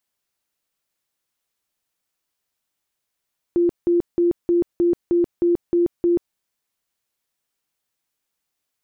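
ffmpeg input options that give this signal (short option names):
-f lavfi -i "aevalsrc='0.2*sin(2*PI*346*mod(t,0.31))*lt(mod(t,0.31),46/346)':d=2.79:s=44100"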